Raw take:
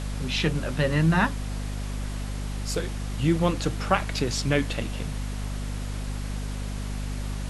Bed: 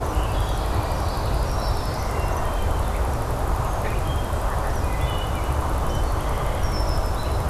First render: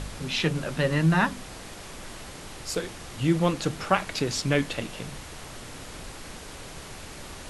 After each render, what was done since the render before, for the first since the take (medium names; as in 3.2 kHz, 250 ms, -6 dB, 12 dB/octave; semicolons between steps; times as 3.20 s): de-hum 50 Hz, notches 5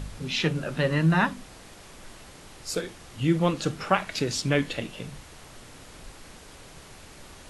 noise print and reduce 6 dB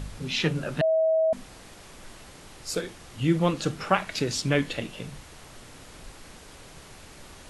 0.81–1.33 s: bleep 642 Hz -19 dBFS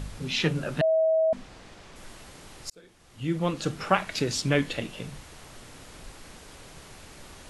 1.04–1.96 s: distance through air 69 m; 2.70–3.84 s: fade in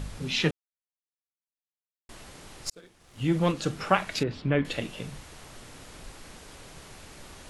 0.51–2.09 s: mute; 2.66–3.52 s: waveshaping leveller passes 1; 4.23–4.65 s: distance through air 440 m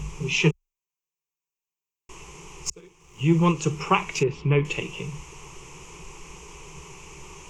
rippled EQ curve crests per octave 0.74, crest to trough 17 dB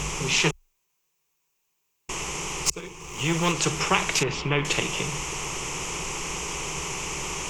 spectrum-flattening compressor 2:1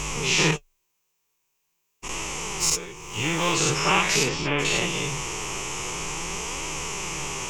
every event in the spectrogram widened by 120 ms; flange 0.45 Hz, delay 3 ms, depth 7.3 ms, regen +57%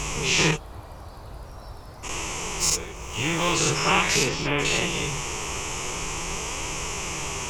add bed -17 dB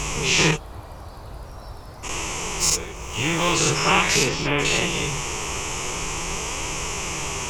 trim +2.5 dB